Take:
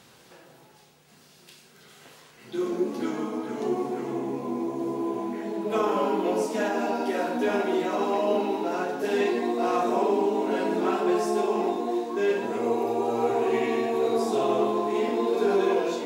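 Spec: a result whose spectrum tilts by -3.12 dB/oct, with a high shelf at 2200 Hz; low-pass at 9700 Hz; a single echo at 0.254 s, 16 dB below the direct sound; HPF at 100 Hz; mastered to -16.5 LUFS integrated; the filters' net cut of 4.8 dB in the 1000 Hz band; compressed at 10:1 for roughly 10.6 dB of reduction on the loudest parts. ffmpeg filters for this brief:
-af "highpass=100,lowpass=9.7k,equalizer=f=1k:t=o:g=-6,highshelf=f=2.2k:g=-4.5,acompressor=threshold=-32dB:ratio=10,aecho=1:1:254:0.158,volume=19.5dB"

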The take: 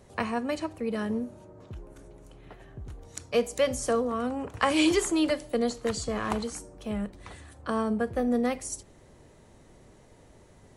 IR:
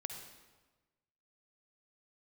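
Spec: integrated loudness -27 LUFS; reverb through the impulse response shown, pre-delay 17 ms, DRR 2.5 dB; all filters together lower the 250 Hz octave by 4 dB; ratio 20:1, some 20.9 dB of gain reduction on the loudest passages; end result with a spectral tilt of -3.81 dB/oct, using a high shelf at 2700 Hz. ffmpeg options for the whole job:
-filter_complex "[0:a]equalizer=f=250:t=o:g=-5,highshelf=f=2.7k:g=3,acompressor=threshold=-41dB:ratio=20,asplit=2[a][b];[1:a]atrim=start_sample=2205,adelay=17[c];[b][c]afir=irnorm=-1:irlink=0,volume=-1dB[d];[a][d]amix=inputs=2:normalize=0,volume=17.5dB"

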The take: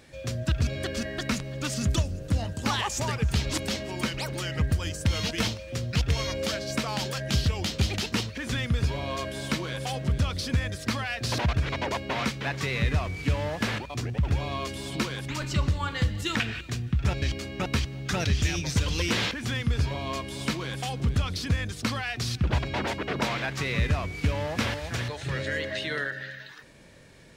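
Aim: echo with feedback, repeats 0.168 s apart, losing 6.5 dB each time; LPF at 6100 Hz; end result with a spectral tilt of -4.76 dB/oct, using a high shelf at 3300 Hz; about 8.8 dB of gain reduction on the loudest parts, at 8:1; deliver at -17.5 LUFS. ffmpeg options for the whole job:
-af "lowpass=6.1k,highshelf=f=3.3k:g=-8,acompressor=threshold=-29dB:ratio=8,aecho=1:1:168|336|504|672|840|1008:0.473|0.222|0.105|0.0491|0.0231|0.0109,volume=16dB"

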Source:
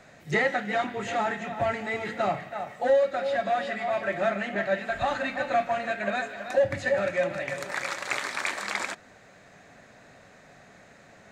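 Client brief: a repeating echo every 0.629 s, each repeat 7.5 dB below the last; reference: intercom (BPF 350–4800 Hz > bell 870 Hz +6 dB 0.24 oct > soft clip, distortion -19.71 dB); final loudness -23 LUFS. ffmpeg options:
-af "highpass=350,lowpass=4.8k,equalizer=f=870:t=o:w=0.24:g=6,aecho=1:1:629|1258|1887|2516|3145:0.422|0.177|0.0744|0.0312|0.0131,asoftclip=threshold=-16.5dB,volume=5.5dB"

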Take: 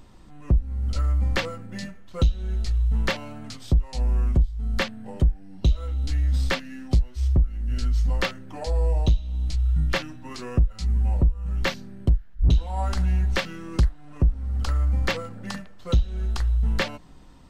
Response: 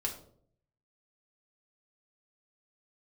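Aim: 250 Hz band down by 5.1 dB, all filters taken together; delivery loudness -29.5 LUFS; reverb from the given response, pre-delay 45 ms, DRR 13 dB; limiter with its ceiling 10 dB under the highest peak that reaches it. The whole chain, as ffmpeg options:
-filter_complex "[0:a]equalizer=f=250:t=o:g=-8,alimiter=limit=-21.5dB:level=0:latency=1,asplit=2[a][b];[1:a]atrim=start_sample=2205,adelay=45[c];[b][c]afir=irnorm=-1:irlink=0,volume=-15.5dB[d];[a][d]amix=inputs=2:normalize=0,volume=1.5dB"

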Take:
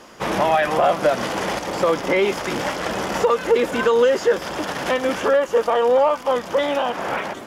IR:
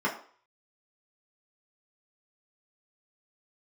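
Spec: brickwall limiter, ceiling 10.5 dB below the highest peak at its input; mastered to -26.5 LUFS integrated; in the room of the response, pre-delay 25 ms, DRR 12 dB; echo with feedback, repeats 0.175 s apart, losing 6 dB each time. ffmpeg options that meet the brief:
-filter_complex "[0:a]alimiter=limit=-17dB:level=0:latency=1,aecho=1:1:175|350|525|700|875|1050:0.501|0.251|0.125|0.0626|0.0313|0.0157,asplit=2[a][b];[1:a]atrim=start_sample=2205,adelay=25[c];[b][c]afir=irnorm=-1:irlink=0,volume=-23dB[d];[a][d]amix=inputs=2:normalize=0,volume=-2.5dB"

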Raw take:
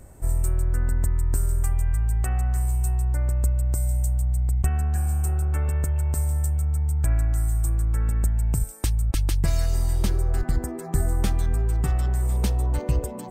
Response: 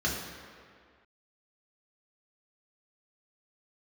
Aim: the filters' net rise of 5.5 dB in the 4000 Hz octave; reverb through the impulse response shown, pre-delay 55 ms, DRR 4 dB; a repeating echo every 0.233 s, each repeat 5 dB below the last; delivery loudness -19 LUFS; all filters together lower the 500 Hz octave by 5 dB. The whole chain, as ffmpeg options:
-filter_complex "[0:a]equalizer=f=500:t=o:g=-7,equalizer=f=4k:t=o:g=7,aecho=1:1:233|466|699|932|1165|1398|1631:0.562|0.315|0.176|0.0988|0.0553|0.031|0.0173,asplit=2[a][b];[1:a]atrim=start_sample=2205,adelay=55[c];[b][c]afir=irnorm=-1:irlink=0,volume=-13dB[d];[a][d]amix=inputs=2:normalize=0,volume=1dB"

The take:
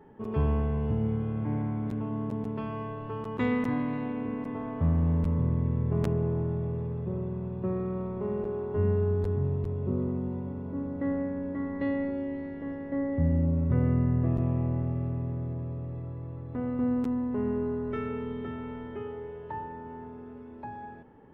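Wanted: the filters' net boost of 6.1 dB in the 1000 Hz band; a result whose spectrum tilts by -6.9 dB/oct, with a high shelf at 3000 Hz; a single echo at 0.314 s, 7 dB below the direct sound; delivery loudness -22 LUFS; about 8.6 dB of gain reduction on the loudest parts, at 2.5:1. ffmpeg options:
-af "equalizer=f=1k:t=o:g=6.5,highshelf=f=3k:g=6.5,acompressor=threshold=-34dB:ratio=2.5,aecho=1:1:314:0.447,volume=13.5dB"

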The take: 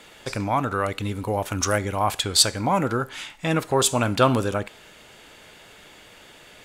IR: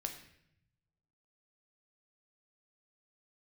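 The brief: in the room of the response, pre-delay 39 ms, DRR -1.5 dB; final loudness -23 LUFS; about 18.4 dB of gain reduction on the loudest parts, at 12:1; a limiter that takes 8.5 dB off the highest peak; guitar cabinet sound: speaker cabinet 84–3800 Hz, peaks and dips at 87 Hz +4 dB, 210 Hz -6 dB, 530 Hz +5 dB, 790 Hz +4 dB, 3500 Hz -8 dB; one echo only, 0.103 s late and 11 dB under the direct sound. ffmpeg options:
-filter_complex "[0:a]acompressor=threshold=-31dB:ratio=12,alimiter=level_in=2.5dB:limit=-24dB:level=0:latency=1,volume=-2.5dB,aecho=1:1:103:0.282,asplit=2[a][b];[1:a]atrim=start_sample=2205,adelay=39[c];[b][c]afir=irnorm=-1:irlink=0,volume=2.5dB[d];[a][d]amix=inputs=2:normalize=0,highpass=84,equalizer=f=87:t=q:w=4:g=4,equalizer=f=210:t=q:w=4:g=-6,equalizer=f=530:t=q:w=4:g=5,equalizer=f=790:t=q:w=4:g=4,equalizer=f=3.5k:t=q:w=4:g=-8,lowpass=f=3.8k:w=0.5412,lowpass=f=3.8k:w=1.3066,volume=9.5dB"

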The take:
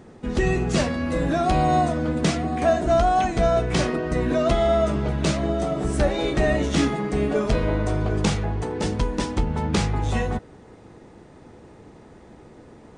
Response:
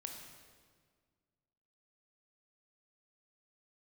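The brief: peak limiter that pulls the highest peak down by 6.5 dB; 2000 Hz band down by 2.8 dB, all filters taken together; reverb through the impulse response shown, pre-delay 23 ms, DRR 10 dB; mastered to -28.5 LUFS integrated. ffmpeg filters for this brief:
-filter_complex "[0:a]equalizer=f=2k:t=o:g=-3.5,alimiter=limit=-15.5dB:level=0:latency=1,asplit=2[a][b];[1:a]atrim=start_sample=2205,adelay=23[c];[b][c]afir=irnorm=-1:irlink=0,volume=-7dB[d];[a][d]amix=inputs=2:normalize=0,volume=-3.5dB"

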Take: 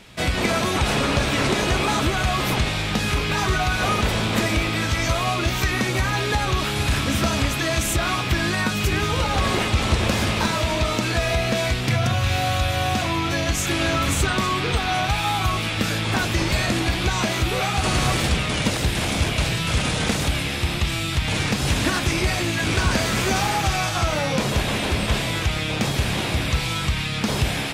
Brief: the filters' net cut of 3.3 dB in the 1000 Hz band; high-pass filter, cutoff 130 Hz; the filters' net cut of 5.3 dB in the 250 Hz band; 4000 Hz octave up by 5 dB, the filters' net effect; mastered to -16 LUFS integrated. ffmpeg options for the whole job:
-af "highpass=130,equalizer=f=250:t=o:g=-6.5,equalizer=f=1k:t=o:g=-4.5,equalizer=f=4k:t=o:g=6.5,volume=5.5dB"

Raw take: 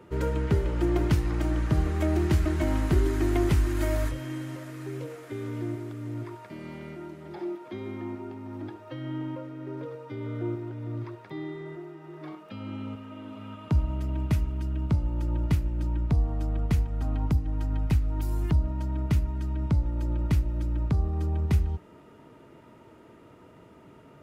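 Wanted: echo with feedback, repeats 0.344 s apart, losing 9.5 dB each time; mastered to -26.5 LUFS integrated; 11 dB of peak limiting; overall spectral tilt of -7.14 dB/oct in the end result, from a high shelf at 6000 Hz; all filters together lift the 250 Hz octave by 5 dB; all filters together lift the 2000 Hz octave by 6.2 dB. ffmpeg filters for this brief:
-af "equalizer=f=250:t=o:g=7,equalizer=f=2k:t=o:g=7,highshelf=f=6k:g=4,alimiter=limit=-20dB:level=0:latency=1,aecho=1:1:344|688|1032|1376:0.335|0.111|0.0365|0.012,volume=3.5dB"

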